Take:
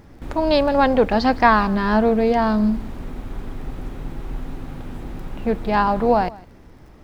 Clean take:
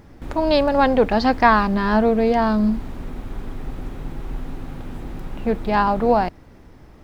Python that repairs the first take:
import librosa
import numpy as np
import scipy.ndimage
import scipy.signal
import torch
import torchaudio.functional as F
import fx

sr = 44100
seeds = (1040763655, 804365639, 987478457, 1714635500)

y = fx.fix_declick_ar(x, sr, threshold=6.5)
y = fx.fix_echo_inverse(y, sr, delay_ms=159, level_db=-21.5)